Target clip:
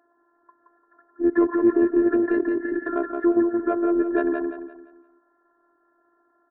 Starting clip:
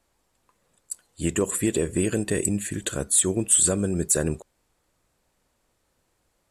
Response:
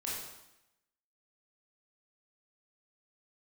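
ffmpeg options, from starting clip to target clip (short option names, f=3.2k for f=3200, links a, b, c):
-filter_complex "[0:a]afftfilt=real='re*between(b*sr/4096,210,1900)':imag='im*between(b*sr/4096,210,1900)':win_size=4096:overlap=0.75,asplit=2[a][b];[b]acompressor=threshold=-36dB:ratio=6,volume=-1dB[c];[a][c]amix=inputs=2:normalize=0,asoftclip=type=tanh:threshold=-10.5dB,afftfilt=real='hypot(re,im)*cos(PI*b)':imag='0':win_size=512:overlap=0.75,aecho=1:1:172|344|516|688|860:0.596|0.214|0.0772|0.0278|0.01,volume=7.5dB"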